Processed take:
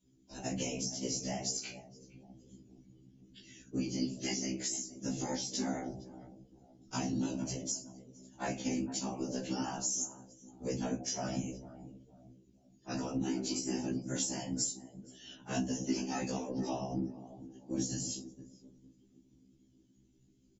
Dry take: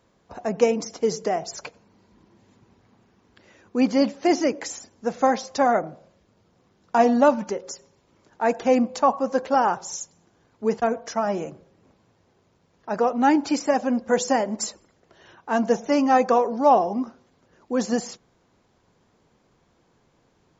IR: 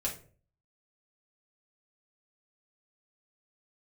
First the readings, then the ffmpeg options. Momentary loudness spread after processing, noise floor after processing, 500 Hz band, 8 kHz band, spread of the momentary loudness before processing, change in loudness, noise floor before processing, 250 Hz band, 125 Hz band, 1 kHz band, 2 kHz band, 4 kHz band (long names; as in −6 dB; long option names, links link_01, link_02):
18 LU, −67 dBFS, −20.0 dB, can't be measured, 14 LU, −14.0 dB, −64 dBFS, −11.5 dB, +0.5 dB, −22.5 dB, −15.5 dB, −4.0 dB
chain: -filter_complex "[0:a]equalizer=frequency=250:width_type=o:width=1:gain=10,equalizer=frequency=500:width_type=o:width=1:gain=-7,equalizer=frequency=1000:width_type=o:width=1:gain=-7,equalizer=frequency=2000:width_type=o:width=1:gain=4,equalizer=frequency=4000:width_type=o:width=1:gain=-5,aexciter=amount=4.8:drive=6.1:freq=2700,lowpass=5900,aemphasis=mode=production:type=50kf[link_01];[1:a]atrim=start_sample=2205,asetrate=52920,aresample=44100[link_02];[link_01][link_02]afir=irnorm=-1:irlink=0,acrossover=split=160|3000[link_03][link_04][link_05];[link_04]acompressor=threshold=-13dB:ratio=6[link_06];[link_03][link_06][link_05]amix=inputs=3:normalize=0,bandreject=frequency=1200:width=23,acompressor=threshold=-26dB:ratio=5,asplit=2[link_07][link_08];[link_08]adelay=465,lowpass=frequency=2000:poles=1,volume=-14dB,asplit=2[link_09][link_10];[link_10]adelay=465,lowpass=frequency=2000:poles=1,volume=0.39,asplit=2[link_11][link_12];[link_12]adelay=465,lowpass=frequency=2000:poles=1,volume=0.39,asplit=2[link_13][link_14];[link_14]adelay=465,lowpass=frequency=2000:poles=1,volume=0.39[link_15];[link_07][link_09][link_11][link_13][link_15]amix=inputs=5:normalize=0,afftdn=noise_reduction=18:noise_floor=-49,afftfilt=real='hypot(re,im)*cos(2*PI*random(0))':imag='hypot(re,im)*sin(2*PI*random(1))':win_size=512:overlap=0.75,afftfilt=real='re*1.73*eq(mod(b,3),0)':imag='im*1.73*eq(mod(b,3),0)':win_size=2048:overlap=0.75"